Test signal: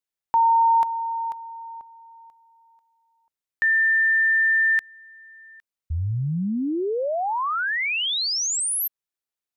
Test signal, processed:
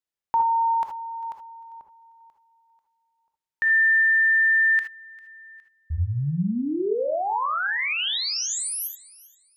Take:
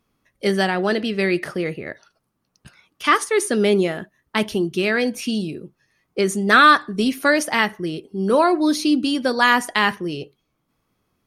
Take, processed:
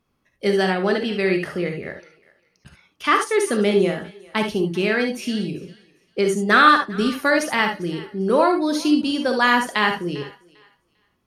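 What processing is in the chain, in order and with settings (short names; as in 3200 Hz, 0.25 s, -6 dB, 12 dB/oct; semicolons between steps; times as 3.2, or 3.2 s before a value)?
high shelf 5800 Hz -5.5 dB; thinning echo 0.398 s, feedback 24%, high-pass 710 Hz, level -20.5 dB; non-linear reverb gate 90 ms rising, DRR 5 dB; gain -1.5 dB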